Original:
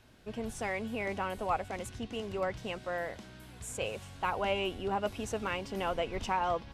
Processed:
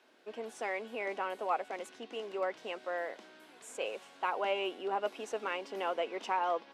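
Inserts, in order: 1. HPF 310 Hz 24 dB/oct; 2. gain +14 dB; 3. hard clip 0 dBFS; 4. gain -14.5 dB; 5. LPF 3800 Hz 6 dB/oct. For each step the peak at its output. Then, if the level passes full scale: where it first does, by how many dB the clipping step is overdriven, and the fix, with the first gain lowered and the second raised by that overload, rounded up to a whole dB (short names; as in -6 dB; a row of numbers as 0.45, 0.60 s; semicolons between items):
-19.0, -5.0, -5.0, -19.5, -20.0 dBFS; no overload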